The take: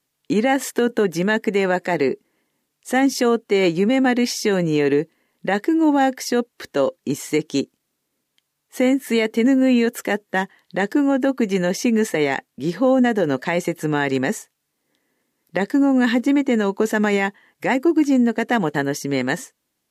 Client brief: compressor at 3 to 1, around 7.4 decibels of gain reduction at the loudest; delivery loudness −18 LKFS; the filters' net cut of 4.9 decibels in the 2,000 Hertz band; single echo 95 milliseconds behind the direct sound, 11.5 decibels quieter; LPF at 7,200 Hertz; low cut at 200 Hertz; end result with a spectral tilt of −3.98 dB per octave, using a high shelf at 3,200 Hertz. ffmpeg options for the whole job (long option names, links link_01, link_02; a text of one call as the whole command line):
ffmpeg -i in.wav -af "highpass=200,lowpass=7200,equalizer=frequency=2000:width_type=o:gain=-8,highshelf=frequency=3200:gain=7.5,acompressor=threshold=-24dB:ratio=3,aecho=1:1:95:0.266,volume=9dB" out.wav